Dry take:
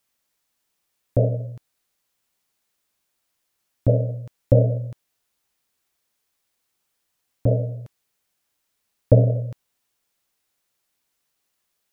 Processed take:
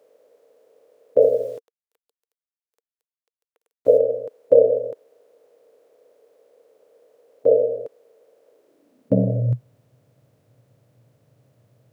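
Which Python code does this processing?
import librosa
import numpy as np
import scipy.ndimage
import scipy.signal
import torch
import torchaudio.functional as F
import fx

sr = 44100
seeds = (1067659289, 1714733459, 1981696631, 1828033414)

y = fx.bin_compress(x, sr, power=0.6)
y = fx.quant_dither(y, sr, seeds[0], bits=8, dither='none', at=(1.2, 3.97), fade=0.02)
y = fx.filter_sweep_highpass(y, sr, from_hz=460.0, to_hz=120.0, start_s=8.5, end_s=9.57, q=6.5)
y = F.gain(torch.from_numpy(y), -6.5).numpy()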